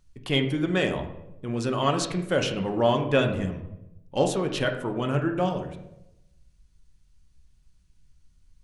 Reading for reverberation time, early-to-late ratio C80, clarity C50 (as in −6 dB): 0.85 s, 11.5 dB, 8.5 dB